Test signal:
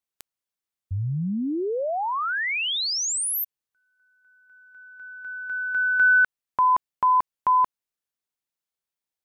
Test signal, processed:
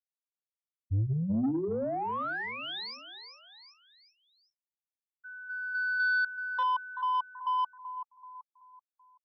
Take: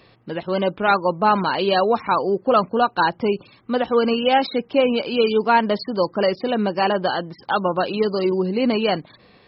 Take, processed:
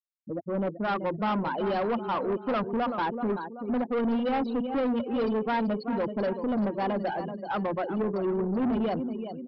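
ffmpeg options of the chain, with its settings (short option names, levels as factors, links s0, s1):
-filter_complex "[0:a]bandreject=f=60:t=h:w=6,bandreject=f=120:t=h:w=6,bandreject=f=180:t=h:w=6,bandreject=f=240:t=h:w=6,bandreject=f=300:t=h:w=6,bandreject=f=360:t=h:w=6,bandreject=f=420:t=h:w=6,afftfilt=real='re*gte(hypot(re,im),0.158)':imag='im*gte(hypot(re,im),0.158)':win_size=1024:overlap=0.75,equalizer=f=100:t=o:w=0.67:g=10,equalizer=f=250:t=o:w=0.67:g=9,equalizer=f=2500:t=o:w=0.67:g=-9,aecho=1:1:382|764|1146|1528:0.251|0.098|0.0382|0.0149,aresample=11025,asoftclip=type=tanh:threshold=0.133,aresample=44100,acrossover=split=4000[s0][s1];[s1]acompressor=threshold=0.00355:ratio=4:attack=1:release=60[s2];[s0][s2]amix=inputs=2:normalize=0,volume=0.501"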